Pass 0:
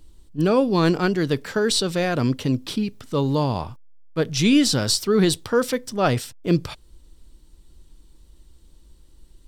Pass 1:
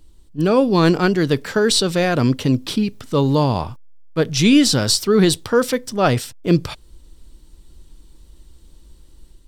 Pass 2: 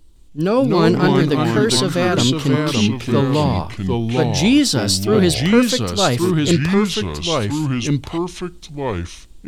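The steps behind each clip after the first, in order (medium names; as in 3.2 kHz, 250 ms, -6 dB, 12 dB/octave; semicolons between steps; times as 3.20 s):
level rider gain up to 5 dB
ever faster or slower copies 160 ms, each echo -3 st, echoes 2; trim -1 dB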